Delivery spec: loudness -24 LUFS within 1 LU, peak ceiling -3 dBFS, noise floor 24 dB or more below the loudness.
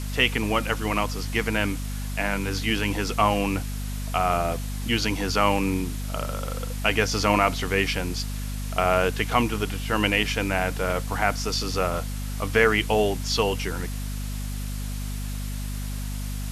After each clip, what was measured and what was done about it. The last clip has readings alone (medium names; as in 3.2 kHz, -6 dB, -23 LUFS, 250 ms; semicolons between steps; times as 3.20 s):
hum 50 Hz; highest harmonic 250 Hz; hum level -28 dBFS; noise floor -30 dBFS; noise floor target -50 dBFS; loudness -25.5 LUFS; peak level -4.5 dBFS; loudness target -24.0 LUFS
-> de-hum 50 Hz, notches 5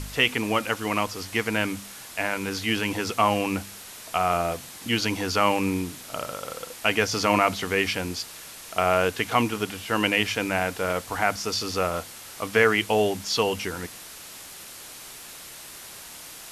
hum not found; noise floor -43 dBFS; noise floor target -50 dBFS
-> noise reduction 7 dB, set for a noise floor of -43 dBFS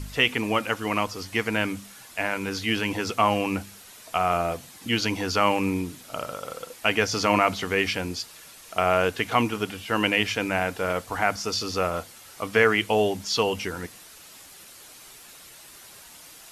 noise floor -48 dBFS; noise floor target -49 dBFS
-> noise reduction 6 dB, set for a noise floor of -48 dBFS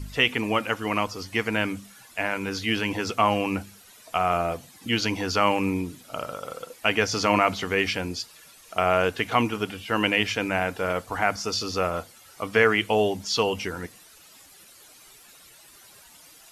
noise floor -52 dBFS; loudness -25.0 LUFS; peak level -4.5 dBFS; loudness target -24.0 LUFS
-> trim +1 dB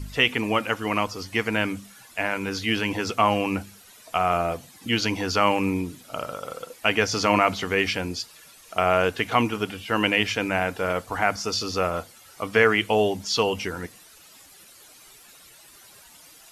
loudness -24.0 LUFS; peak level -3.5 dBFS; noise floor -51 dBFS